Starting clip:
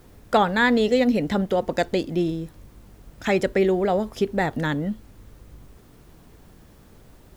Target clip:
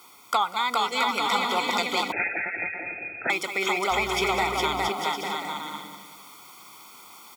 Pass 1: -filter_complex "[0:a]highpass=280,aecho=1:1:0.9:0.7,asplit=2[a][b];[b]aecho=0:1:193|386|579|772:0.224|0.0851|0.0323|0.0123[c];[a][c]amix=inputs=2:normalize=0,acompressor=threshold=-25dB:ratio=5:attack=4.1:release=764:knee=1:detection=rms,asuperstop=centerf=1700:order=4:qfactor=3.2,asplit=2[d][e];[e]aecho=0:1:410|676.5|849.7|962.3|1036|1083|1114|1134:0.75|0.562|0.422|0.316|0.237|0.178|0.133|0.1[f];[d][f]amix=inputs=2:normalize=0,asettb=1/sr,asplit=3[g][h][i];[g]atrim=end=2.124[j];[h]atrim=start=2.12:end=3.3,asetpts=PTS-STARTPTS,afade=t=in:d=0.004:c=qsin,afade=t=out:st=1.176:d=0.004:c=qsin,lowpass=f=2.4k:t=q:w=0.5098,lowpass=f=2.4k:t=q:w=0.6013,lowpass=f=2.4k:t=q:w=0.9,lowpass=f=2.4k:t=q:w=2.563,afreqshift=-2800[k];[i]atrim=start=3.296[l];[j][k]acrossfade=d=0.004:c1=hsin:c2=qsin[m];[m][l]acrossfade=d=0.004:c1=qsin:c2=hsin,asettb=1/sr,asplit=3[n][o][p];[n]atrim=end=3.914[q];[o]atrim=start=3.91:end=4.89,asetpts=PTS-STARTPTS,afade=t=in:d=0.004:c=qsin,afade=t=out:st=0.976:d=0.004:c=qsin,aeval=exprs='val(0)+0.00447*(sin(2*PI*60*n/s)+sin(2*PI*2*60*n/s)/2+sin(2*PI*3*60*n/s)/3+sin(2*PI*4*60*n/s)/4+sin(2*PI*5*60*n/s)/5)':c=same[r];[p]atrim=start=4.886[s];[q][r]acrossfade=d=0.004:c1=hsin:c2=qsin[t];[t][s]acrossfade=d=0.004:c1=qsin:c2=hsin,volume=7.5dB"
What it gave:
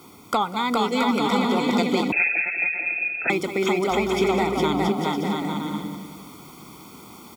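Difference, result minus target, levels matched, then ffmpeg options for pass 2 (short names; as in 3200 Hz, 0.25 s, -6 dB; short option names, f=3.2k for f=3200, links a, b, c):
250 Hz band +10.0 dB
-filter_complex "[0:a]highpass=880,aecho=1:1:0.9:0.7,asplit=2[a][b];[b]aecho=0:1:193|386|579|772:0.224|0.0851|0.0323|0.0123[c];[a][c]amix=inputs=2:normalize=0,acompressor=threshold=-25dB:ratio=5:attack=4.1:release=764:knee=1:detection=rms,asuperstop=centerf=1700:order=4:qfactor=3.2,asplit=2[d][e];[e]aecho=0:1:410|676.5|849.7|962.3|1036|1083|1114|1134:0.75|0.562|0.422|0.316|0.237|0.178|0.133|0.1[f];[d][f]amix=inputs=2:normalize=0,asettb=1/sr,asplit=3[g][h][i];[g]atrim=end=2.124[j];[h]atrim=start=2.12:end=3.3,asetpts=PTS-STARTPTS,afade=t=in:d=0.004:c=qsin,afade=t=out:st=1.176:d=0.004:c=qsin,lowpass=f=2.4k:t=q:w=0.5098,lowpass=f=2.4k:t=q:w=0.6013,lowpass=f=2.4k:t=q:w=0.9,lowpass=f=2.4k:t=q:w=2.563,afreqshift=-2800[k];[i]atrim=start=3.296[l];[j][k]acrossfade=d=0.004:c1=hsin:c2=qsin[m];[m][l]acrossfade=d=0.004:c1=qsin:c2=hsin,asettb=1/sr,asplit=3[n][o][p];[n]atrim=end=3.914[q];[o]atrim=start=3.91:end=4.89,asetpts=PTS-STARTPTS,afade=t=in:d=0.004:c=qsin,afade=t=out:st=0.976:d=0.004:c=qsin,aeval=exprs='val(0)+0.00447*(sin(2*PI*60*n/s)+sin(2*PI*2*60*n/s)/2+sin(2*PI*3*60*n/s)/3+sin(2*PI*4*60*n/s)/4+sin(2*PI*5*60*n/s)/5)':c=same[r];[p]atrim=start=4.886[s];[q][r]acrossfade=d=0.004:c1=hsin:c2=qsin[t];[t][s]acrossfade=d=0.004:c1=qsin:c2=hsin,volume=7.5dB"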